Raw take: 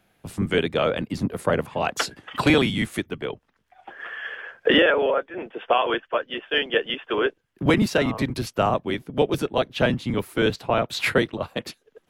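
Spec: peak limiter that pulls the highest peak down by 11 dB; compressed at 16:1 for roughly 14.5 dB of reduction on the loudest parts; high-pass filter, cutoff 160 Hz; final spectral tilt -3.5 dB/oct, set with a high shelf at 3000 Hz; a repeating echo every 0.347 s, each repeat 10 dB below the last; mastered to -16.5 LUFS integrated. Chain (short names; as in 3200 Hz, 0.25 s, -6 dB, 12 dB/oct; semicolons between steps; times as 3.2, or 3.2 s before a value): HPF 160 Hz; high shelf 3000 Hz -7 dB; compressor 16:1, threshold -29 dBFS; limiter -27 dBFS; feedback echo 0.347 s, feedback 32%, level -10 dB; gain +21 dB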